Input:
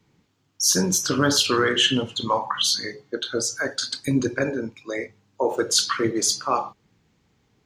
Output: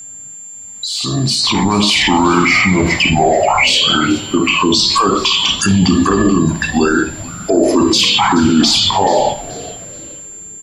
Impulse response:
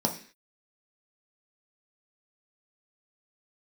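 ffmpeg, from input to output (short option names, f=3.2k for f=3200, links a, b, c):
-filter_complex "[0:a]highpass=f=190:p=1,highshelf=f=9.9k:g=3.5,acontrast=51,alimiter=level_in=5.5dB:limit=-24dB:level=0:latency=1:release=96,volume=-5.5dB,dynaudnorm=f=190:g=9:m=17dB,asetrate=31752,aresample=44100,aeval=exprs='val(0)+0.0126*sin(2*PI*7300*n/s)':c=same,asplit=4[a][b][c][d];[b]adelay=430,afreqshift=-140,volume=-17.5dB[e];[c]adelay=860,afreqshift=-280,volume=-26.6dB[f];[d]adelay=1290,afreqshift=-420,volume=-35.7dB[g];[a][e][f][g]amix=inputs=4:normalize=0,asplit=2[h][i];[1:a]atrim=start_sample=2205,adelay=54[j];[i][j]afir=irnorm=-1:irlink=0,volume=-25.5dB[k];[h][k]amix=inputs=2:normalize=0,volume=8dB"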